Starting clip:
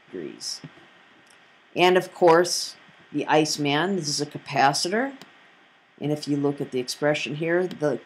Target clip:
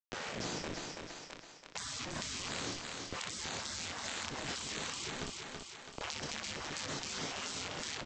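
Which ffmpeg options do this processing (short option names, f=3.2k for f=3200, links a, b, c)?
-filter_complex "[0:a]bandreject=f=60:t=h:w=6,bandreject=f=120:t=h:w=6,asplit=2[a][b];[b]alimiter=limit=-12dB:level=0:latency=1:release=203,volume=1.5dB[c];[a][c]amix=inputs=2:normalize=0,highpass=f=81:w=0.5412,highpass=f=81:w=1.3066,aresample=16000,acrusher=bits=3:dc=4:mix=0:aa=0.000001,aresample=44100,acompressor=threshold=-17dB:ratio=2.5,aecho=1:1:26|61:0.473|0.501,afftfilt=real='re*lt(hypot(re,im),0.0631)':imag='im*lt(hypot(re,im),0.0631)':win_size=1024:overlap=0.75,bass=f=250:g=-3,treble=f=4k:g=3,flanger=delay=6.8:depth=2.3:regen=-87:speed=1.5:shape=triangular,aecho=1:1:330|660|990|1320:0.447|0.165|0.0612|0.0226,acrossover=split=350[d][e];[e]acompressor=threshold=-53dB:ratio=2[f];[d][f]amix=inputs=2:normalize=0,aemphasis=mode=reproduction:type=50kf,volume=10.5dB"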